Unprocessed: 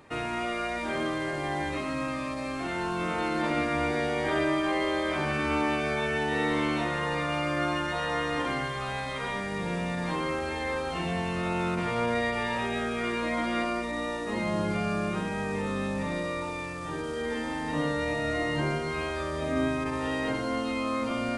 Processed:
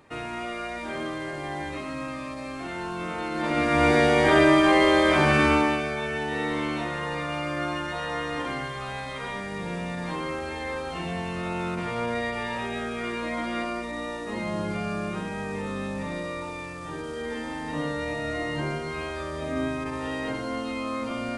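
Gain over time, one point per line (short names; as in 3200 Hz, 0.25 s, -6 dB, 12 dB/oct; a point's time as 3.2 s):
3.3 s -2 dB
3.89 s +9 dB
5.43 s +9 dB
5.91 s -1 dB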